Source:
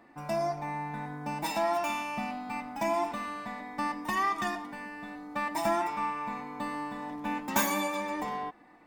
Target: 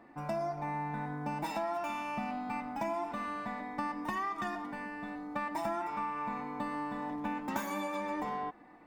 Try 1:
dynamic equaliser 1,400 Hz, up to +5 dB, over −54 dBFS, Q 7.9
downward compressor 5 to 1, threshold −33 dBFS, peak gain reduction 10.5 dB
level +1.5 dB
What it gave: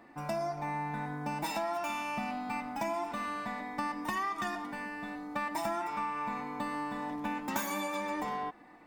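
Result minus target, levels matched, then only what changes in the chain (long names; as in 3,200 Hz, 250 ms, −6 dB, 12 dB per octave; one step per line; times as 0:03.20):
4,000 Hz band +4.5 dB
add after downward compressor: high-shelf EQ 2,600 Hz −8.5 dB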